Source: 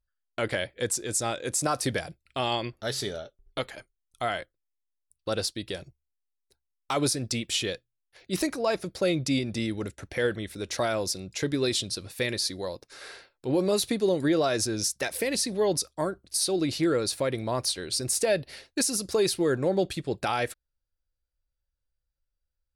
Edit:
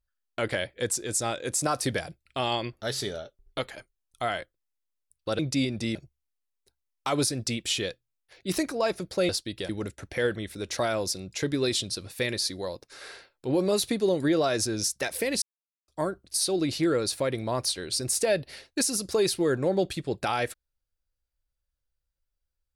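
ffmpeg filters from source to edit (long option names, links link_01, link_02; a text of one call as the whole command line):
ffmpeg -i in.wav -filter_complex "[0:a]asplit=7[link_01][link_02][link_03][link_04][link_05][link_06][link_07];[link_01]atrim=end=5.392[link_08];[link_02]atrim=start=9.128:end=9.692[link_09];[link_03]atrim=start=5.788:end=9.132[link_10];[link_04]atrim=start=5.388:end=5.792[link_11];[link_05]atrim=start=9.688:end=15.42,asetpts=PTS-STARTPTS,afade=type=out:start_time=5.728:duration=0.004:curve=hsin[link_12];[link_06]atrim=start=15.42:end=15.88,asetpts=PTS-STARTPTS,volume=0[link_13];[link_07]atrim=start=15.88,asetpts=PTS-STARTPTS,afade=type=in:duration=0.004:curve=hsin[link_14];[link_08][link_09]acrossfade=duration=0.004:curve1=hsin:curve2=hsin[link_15];[link_15][link_10]acrossfade=duration=0.004:curve1=hsin:curve2=hsin[link_16];[link_16][link_11]acrossfade=duration=0.004:curve1=hsin:curve2=hsin[link_17];[link_12][link_13][link_14]concat=n=3:v=0:a=1[link_18];[link_17][link_18]acrossfade=duration=0.004:curve1=hsin:curve2=hsin" out.wav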